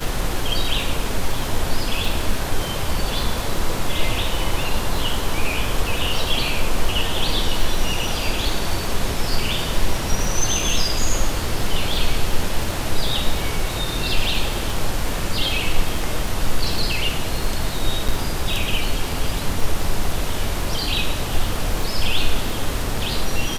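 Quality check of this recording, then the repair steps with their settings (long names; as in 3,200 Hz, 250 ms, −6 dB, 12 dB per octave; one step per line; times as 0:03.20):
surface crackle 46 per second −24 dBFS
0:18.08–0:18.09: drop-out 6.3 ms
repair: click removal
repair the gap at 0:18.08, 6.3 ms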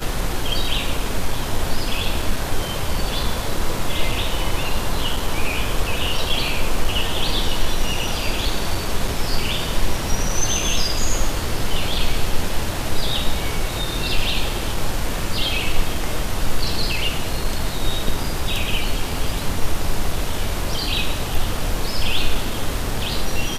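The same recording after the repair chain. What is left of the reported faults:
none of them is left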